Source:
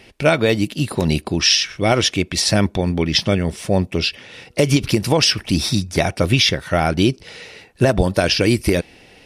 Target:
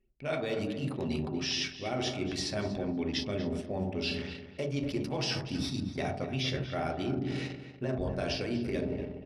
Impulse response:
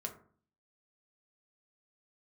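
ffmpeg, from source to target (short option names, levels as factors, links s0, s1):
-filter_complex "[1:a]atrim=start_sample=2205,asetrate=26460,aresample=44100[s0];[0:a][s0]afir=irnorm=-1:irlink=0,acrossover=split=6000[s1][s2];[s2]acompressor=threshold=0.0178:ratio=4:attack=1:release=60[s3];[s1][s3]amix=inputs=2:normalize=0,equalizer=f=95:w=1.8:g=-7,bandreject=f=890:w=25,areverse,acompressor=threshold=0.0398:ratio=5,areverse,anlmdn=1.58,asplit=2[s4][s5];[s5]adelay=239,lowpass=f=2600:p=1,volume=0.316,asplit=2[s6][s7];[s7]adelay=239,lowpass=f=2600:p=1,volume=0.24,asplit=2[s8][s9];[s9]adelay=239,lowpass=f=2600:p=1,volume=0.24[s10];[s4][s6][s8][s10]amix=inputs=4:normalize=0,volume=0.631"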